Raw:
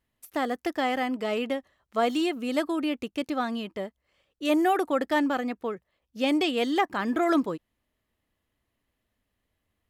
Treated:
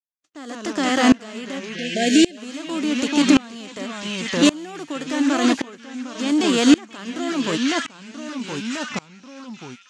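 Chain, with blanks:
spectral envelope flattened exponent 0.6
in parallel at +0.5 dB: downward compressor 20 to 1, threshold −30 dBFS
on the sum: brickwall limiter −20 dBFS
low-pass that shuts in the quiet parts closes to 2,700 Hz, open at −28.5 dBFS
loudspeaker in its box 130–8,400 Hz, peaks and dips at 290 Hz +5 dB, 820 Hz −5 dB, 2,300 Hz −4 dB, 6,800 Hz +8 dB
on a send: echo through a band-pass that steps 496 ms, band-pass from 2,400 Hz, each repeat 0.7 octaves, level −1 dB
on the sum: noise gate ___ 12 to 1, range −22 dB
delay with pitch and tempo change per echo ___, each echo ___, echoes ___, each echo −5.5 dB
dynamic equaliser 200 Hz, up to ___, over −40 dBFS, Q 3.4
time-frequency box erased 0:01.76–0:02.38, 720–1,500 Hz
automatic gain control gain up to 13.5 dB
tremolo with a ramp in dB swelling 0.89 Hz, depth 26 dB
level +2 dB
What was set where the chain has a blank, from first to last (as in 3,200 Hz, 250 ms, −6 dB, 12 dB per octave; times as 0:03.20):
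−51 dBFS, 106 ms, −2 semitones, 2, −4 dB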